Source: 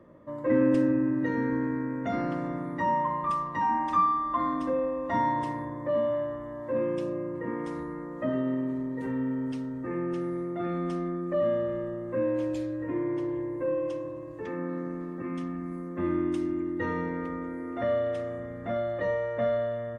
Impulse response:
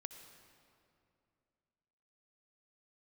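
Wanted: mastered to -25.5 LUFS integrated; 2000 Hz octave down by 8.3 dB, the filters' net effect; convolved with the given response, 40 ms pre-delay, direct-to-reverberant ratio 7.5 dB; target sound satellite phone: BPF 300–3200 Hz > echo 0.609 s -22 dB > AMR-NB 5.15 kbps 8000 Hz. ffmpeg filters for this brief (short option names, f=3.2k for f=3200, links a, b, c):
-filter_complex "[0:a]equalizer=f=2k:t=o:g=-9,asplit=2[a][b];[1:a]atrim=start_sample=2205,adelay=40[c];[b][c]afir=irnorm=-1:irlink=0,volume=-3.5dB[d];[a][d]amix=inputs=2:normalize=0,highpass=300,lowpass=3.2k,aecho=1:1:609:0.0794,volume=7.5dB" -ar 8000 -c:a libopencore_amrnb -b:a 5150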